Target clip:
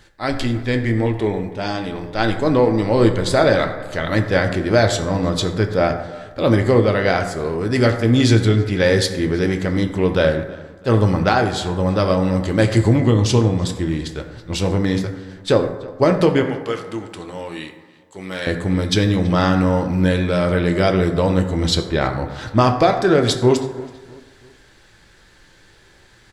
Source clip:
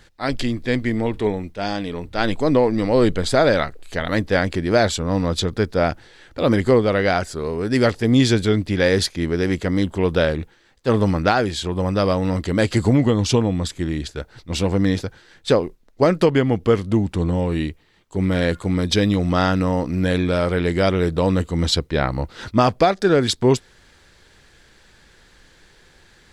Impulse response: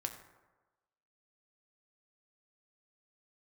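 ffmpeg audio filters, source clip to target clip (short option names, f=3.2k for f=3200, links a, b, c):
-filter_complex "[0:a]asettb=1/sr,asplit=3[a][b][c];[a]atrim=end=16.434[d];[b]atrim=start=16.43:end=18.47,asetpts=PTS-STARTPTS,afade=t=in:d=0.004:c=qsin,afade=t=out:st=2.036:d=0.004:c=qsin,highpass=f=1.2k:p=1[e];[c]atrim=start=18.466[f];[d][e]acrossfade=d=0.004:c1=hsin:c2=qsin[g];[g][f]acrossfade=d=0.004:c1=qsin:c2=hsin,asplit=2[h][i];[i]adelay=328,lowpass=f=3.8k:p=1,volume=-21dB,asplit=2[j][k];[k]adelay=328,lowpass=f=3.8k:p=1,volume=0.46,asplit=2[l][m];[m]adelay=328,lowpass=f=3.8k:p=1,volume=0.46[n];[h][j][l][n]amix=inputs=4:normalize=0[o];[1:a]atrim=start_sample=2205[p];[o][p]afir=irnorm=-1:irlink=0,volume=2dB"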